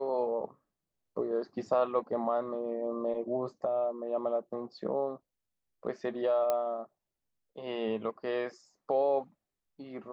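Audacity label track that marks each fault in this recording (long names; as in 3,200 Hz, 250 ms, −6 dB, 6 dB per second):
6.500000	6.500000	click −17 dBFS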